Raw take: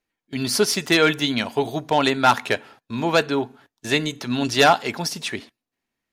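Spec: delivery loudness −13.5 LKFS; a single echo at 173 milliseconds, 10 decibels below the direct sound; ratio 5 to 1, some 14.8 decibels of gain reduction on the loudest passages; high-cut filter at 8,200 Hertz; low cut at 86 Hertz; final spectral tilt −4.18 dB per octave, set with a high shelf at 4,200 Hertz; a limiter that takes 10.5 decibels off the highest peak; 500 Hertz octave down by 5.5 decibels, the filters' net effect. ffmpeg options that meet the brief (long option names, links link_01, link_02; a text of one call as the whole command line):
ffmpeg -i in.wav -af "highpass=86,lowpass=8200,equalizer=frequency=500:width_type=o:gain=-7,highshelf=frequency=4200:gain=-8,acompressor=threshold=-30dB:ratio=5,alimiter=level_in=3dB:limit=-24dB:level=0:latency=1,volume=-3dB,aecho=1:1:173:0.316,volume=24dB" out.wav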